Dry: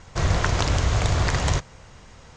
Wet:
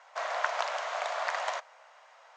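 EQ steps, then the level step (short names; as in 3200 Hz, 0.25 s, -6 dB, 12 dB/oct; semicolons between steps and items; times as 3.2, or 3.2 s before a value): elliptic high-pass 620 Hz, stop band 60 dB; LPF 1300 Hz 6 dB/oct; 0.0 dB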